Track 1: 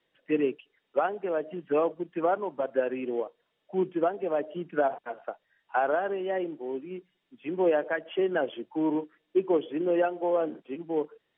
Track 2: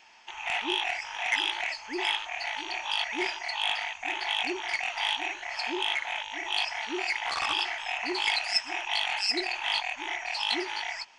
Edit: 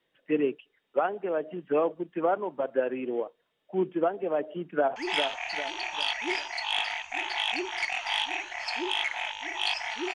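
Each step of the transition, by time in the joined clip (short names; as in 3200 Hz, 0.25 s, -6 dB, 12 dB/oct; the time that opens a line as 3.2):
track 1
4.7–4.96 echo throw 0.4 s, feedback 45%, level -6.5 dB
4.96 switch to track 2 from 1.87 s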